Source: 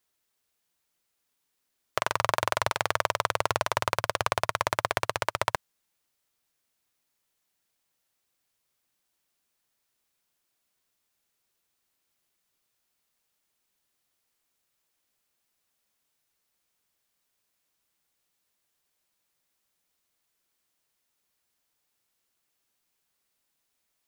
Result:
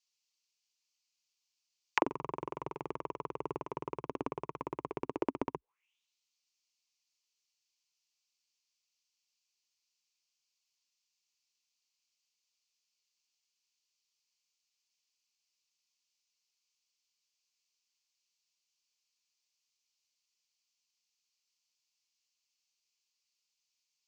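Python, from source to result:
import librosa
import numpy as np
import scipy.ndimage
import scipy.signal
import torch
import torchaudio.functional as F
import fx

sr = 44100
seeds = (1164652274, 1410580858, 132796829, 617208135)

y = fx.ripple_eq(x, sr, per_octave=0.74, db=12)
y = fx.auto_wah(y, sr, base_hz=270.0, top_hz=4500.0, q=5.2, full_db=-23.5, direction='down')
y = y * 10.0 ** (7.0 / 20.0)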